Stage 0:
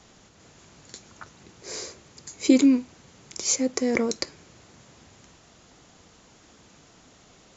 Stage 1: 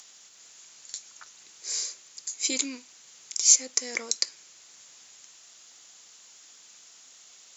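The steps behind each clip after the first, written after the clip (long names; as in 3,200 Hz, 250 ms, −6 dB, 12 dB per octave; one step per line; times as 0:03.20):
first difference
upward compression, threshold −56 dBFS
level +8 dB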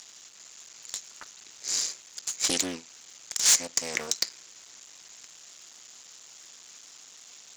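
sub-harmonics by changed cycles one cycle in 3, muted
gain into a clipping stage and back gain 17.5 dB
highs frequency-modulated by the lows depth 0.37 ms
level +4.5 dB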